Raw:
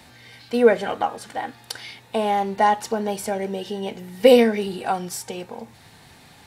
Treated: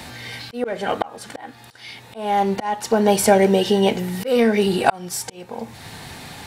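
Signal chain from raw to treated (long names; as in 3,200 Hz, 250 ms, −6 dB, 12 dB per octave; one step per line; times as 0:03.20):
in parallel at −4.5 dB: hard clipping −15.5 dBFS, distortion −7 dB
on the sum: volume swells 627 ms
level +8 dB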